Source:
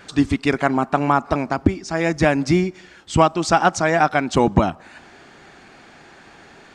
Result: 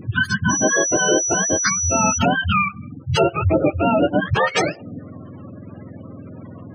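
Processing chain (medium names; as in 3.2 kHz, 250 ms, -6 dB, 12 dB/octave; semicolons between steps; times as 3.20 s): spectrum inverted on a logarithmic axis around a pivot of 660 Hz; in parallel at +3 dB: compression 6:1, threshold -26 dBFS, peak gain reduction 14 dB; 0.49–2.17 s: on the sum: whistle 5.9 kHz -19 dBFS; saturation -8.5 dBFS, distortion -17 dB; spectral gate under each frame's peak -20 dB strong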